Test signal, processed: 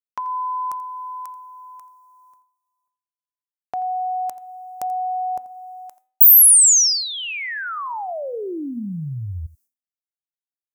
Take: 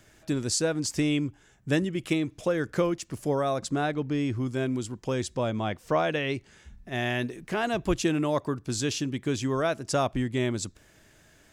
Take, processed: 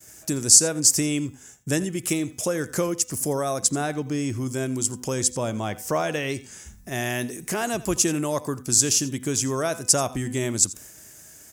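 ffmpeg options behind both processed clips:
ffmpeg -i in.wav -filter_complex "[0:a]agate=range=-33dB:threshold=-54dB:ratio=3:detection=peak,highpass=56,bandreject=frequency=251.8:width_type=h:width=4,bandreject=frequency=503.6:width_type=h:width=4,bandreject=frequency=755.4:width_type=h:width=4,bandreject=frequency=1007.2:width_type=h:width=4,bandreject=frequency=1259:width_type=h:width=4,bandreject=frequency=1510.8:width_type=h:width=4,bandreject=frequency=1762.6:width_type=h:width=4,bandreject=frequency=2014.4:width_type=h:width=4,bandreject=frequency=2266.2:width_type=h:width=4,bandreject=frequency=2518:width_type=h:width=4,bandreject=frequency=2769.8:width_type=h:width=4,bandreject=frequency=3021.6:width_type=h:width=4,bandreject=frequency=3273.4:width_type=h:width=4,bandreject=frequency=3525.2:width_type=h:width=4,bandreject=frequency=3777:width_type=h:width=4,bandreject=frequency=4028.8:width_type=h:width=4,asplit=2[link_01][link_02];[link_02]acompressor=threshold=-37dB:ratio=6,volume=2.5dB[link_03];[link_01][link_03]amix=inputs=2:normalize=0,aecho=1:1:85:0.119,aexciter=amount=7:drive=4.3:freq=5300,volume=-1.5dB" out.wav

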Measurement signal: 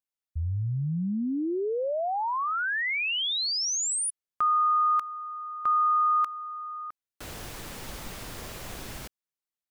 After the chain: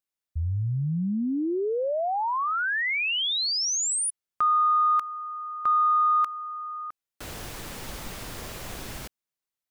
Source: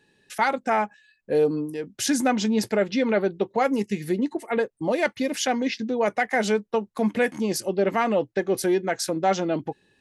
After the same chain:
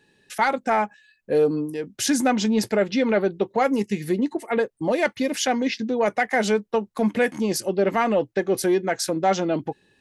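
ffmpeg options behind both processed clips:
ffmpeg -i in.wav -af "acontrast=63,volume=-4.5dB" out.wav

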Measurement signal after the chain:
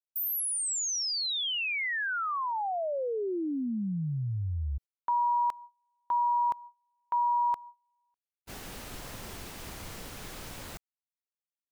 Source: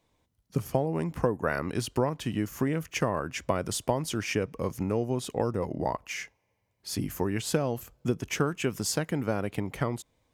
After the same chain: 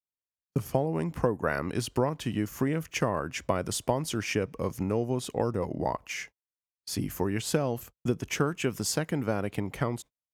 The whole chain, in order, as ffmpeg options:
ffmpeg -i in.wav -af "agate=range=-38dB:threshold=-44dB:ratio=16:detection=peak" out.wav

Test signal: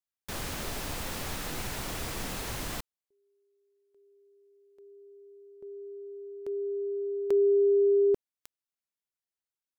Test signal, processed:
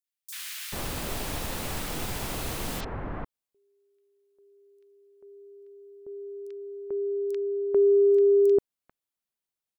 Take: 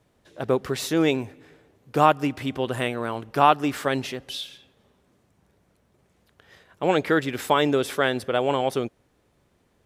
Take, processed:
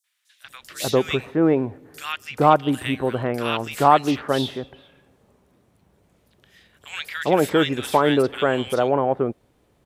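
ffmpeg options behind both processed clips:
ffmpeg -i in.wav -filter_complex "[0:a]acrossover=split=1700|5800[link_01][link_02][link_03];[link_02]adelay=40[link_04];[link_01]adelay=440[link_05];[link_05][link_04][link_03]amix=inputs=3:normalize=0,aeval=exprs='0.631*(cos(1*acos(clip(val(0)/0.631,-1,1)))-cos(1*PI/2))+0.00891*(cos(5*acos(clip(val(0)/0.631,-1,1)))-cos(5*PI/2))':channel_layout=same,volume=3dB" out.wav

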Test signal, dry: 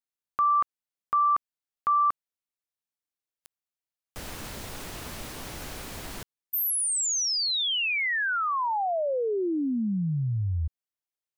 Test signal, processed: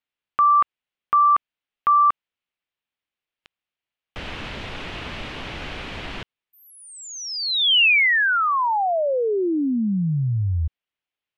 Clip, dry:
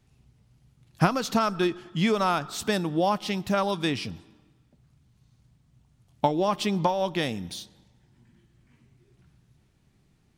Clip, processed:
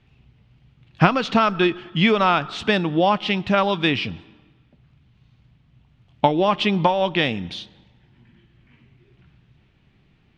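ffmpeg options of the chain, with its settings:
ffmpeg -i in.wav -af "lowpass=frequency=2900:width_type=q:width=2,volume=5.5dB" out.wav

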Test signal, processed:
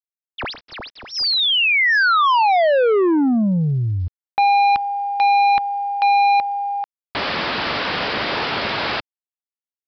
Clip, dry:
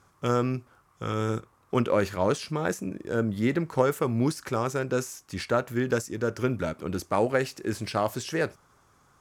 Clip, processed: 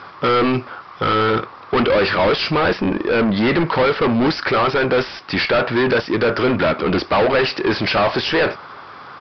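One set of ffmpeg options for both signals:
ffmpeg -i in.wav -filter_complex "[0:a]highpass=47,asplit=2[link_01][link_02];[link_02]highpass=frequency=720:poles=1,volume=35dB,asoftclip=type=tanh:threshold=-8dB[link_03];[link_01][link_03]amix=inputs=2:normalize=0,lowpass=frequency=3400:poles=1,volume=-6dB,aresample=11025,aeval=exprs='val(0)*gte(abs(val(0)),0.00473)':channel_layout=same,aresample=44100" out.wav

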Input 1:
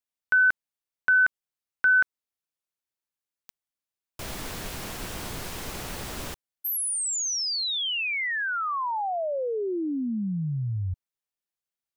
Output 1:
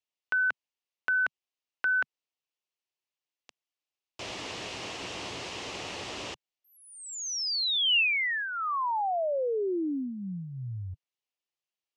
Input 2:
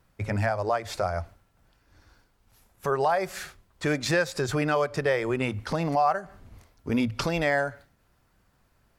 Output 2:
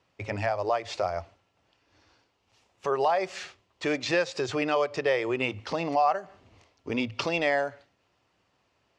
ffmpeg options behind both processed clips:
ffmpeg -i in.wav -filter_complex "[0:a]acrossover=split=4200[link_01][link_02];[link_02]acompressor=threshold=-34dB:ratio=4:attack=1:release=60[link_03];[link_01][link_03]amix=inputs=2:normalize=0,highpass=140,equalizer=frequency=150:width_type=q:width=4:gain=-9,equalizer=frequency=220:width_type=q:width=4:gain=-8,equalizer=frequency=1500:width_type=q:width=4:gain=-7,equalizer=frequency=2800:width_type=q:width=4:gain=6,lowpass=frequency=6600:width=0.5412,lowpass=frequency=6600:width=1.3066" out.wav

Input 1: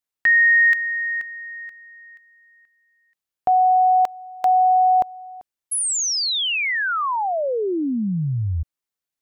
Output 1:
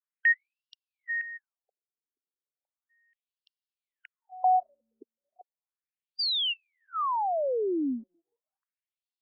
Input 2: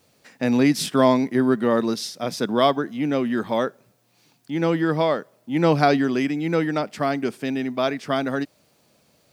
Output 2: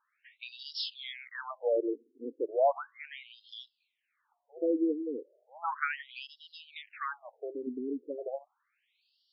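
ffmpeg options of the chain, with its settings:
ffmpeg -i in.wav -af "afftfilt=real='re*between(b*sr/1024,330*pow(4000/330,0.5+0.5*sin(2*PI*0.35*pts/sr))/1.41,330*pow(4000/330,0.5+0.5*sin(2*PI*0.35*pts/sr))*1.41)':imag='im*between(b*sr/1024,330*pow(4000/330,0.5+0.5*sin(2*PI*0.35*pts/sr))/1.41,330*pow(4000/330,0.5+0.5*sin(2*PI*0.35*pts/sr))*1.41)':win_size=1024:overlap=0.75,volume=-5.5dB" out.wav

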